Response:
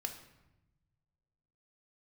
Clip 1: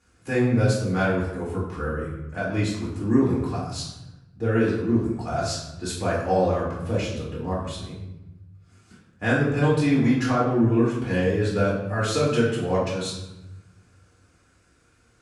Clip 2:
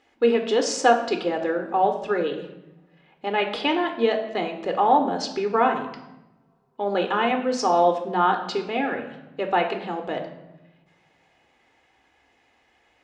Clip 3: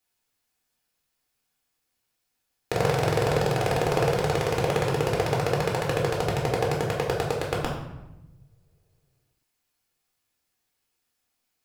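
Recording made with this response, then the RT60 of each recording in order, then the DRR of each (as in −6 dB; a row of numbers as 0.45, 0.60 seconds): 2; 0.95, 0.95, 0.95 seconds; −8.0, 4.0, −3.0 decibels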